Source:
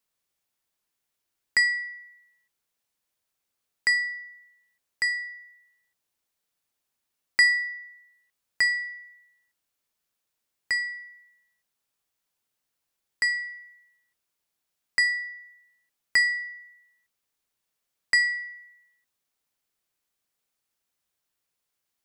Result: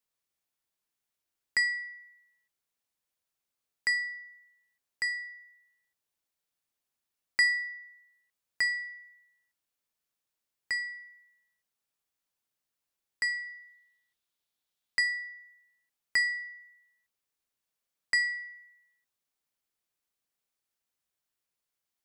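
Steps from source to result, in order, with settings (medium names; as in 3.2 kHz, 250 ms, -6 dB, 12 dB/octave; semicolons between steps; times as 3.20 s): 13.46–15.01 s: peaking EQ 3.6 kHz +7.5 dB 0.56 oct; trim -5.5 dB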